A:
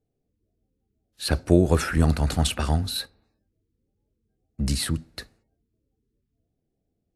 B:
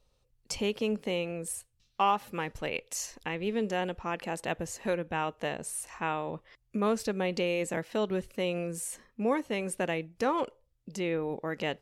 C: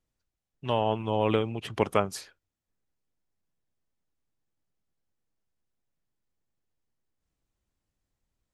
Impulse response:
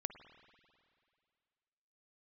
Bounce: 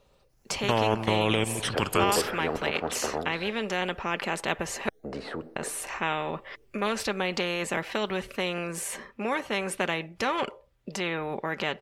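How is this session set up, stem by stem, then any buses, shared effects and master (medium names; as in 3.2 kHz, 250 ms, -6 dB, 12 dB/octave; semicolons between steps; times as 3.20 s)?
-3.0 dB, 0.45 s, send -20 dB, ladder band-pass 490 Hz, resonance 65%
-7.5 dB, 0.00 s, muted 4.89–5.56 s, no send, high-pass 81 Hz 6 dB/octave; tone controls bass -5 dB, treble -13 dB; comb 5.1 ms, depth 40%
-0.5 dB, 0.00 s, send -10.5 dB, level held to a coarse grid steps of 15 dB; phase shifter stages 12, 0.38 Hz, lowest notch 620–3800 Hz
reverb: on, RT60 2.3 s, pre-delay 49 ms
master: level rider gain up to 4.5 dB; spectrum-flattening compressor 2:1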